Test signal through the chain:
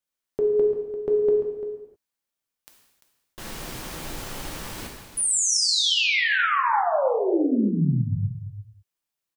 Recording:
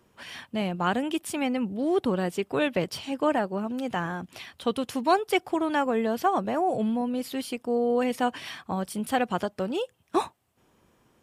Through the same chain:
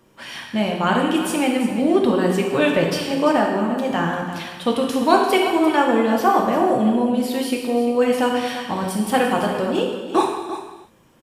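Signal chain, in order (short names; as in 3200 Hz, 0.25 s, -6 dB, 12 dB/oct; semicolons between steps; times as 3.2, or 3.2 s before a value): on a send: echo 0.344 s -11.5 dB; on the sum: non-linear reverb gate 0.34 s falling, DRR 0 dB; gain +5 dB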